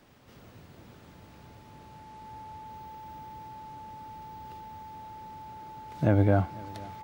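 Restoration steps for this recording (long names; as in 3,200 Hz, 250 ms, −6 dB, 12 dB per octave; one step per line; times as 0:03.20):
notch filter 870 Hz, Q 30
echo removal 498 ms −22 dB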